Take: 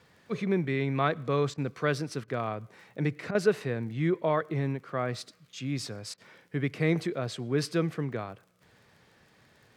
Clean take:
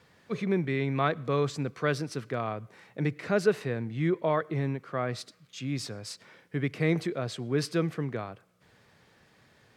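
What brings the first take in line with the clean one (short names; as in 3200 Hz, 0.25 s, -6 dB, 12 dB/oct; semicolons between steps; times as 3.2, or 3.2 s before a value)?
de-click; interpolate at 1.54/2.24/3.31/6.14, 37 ms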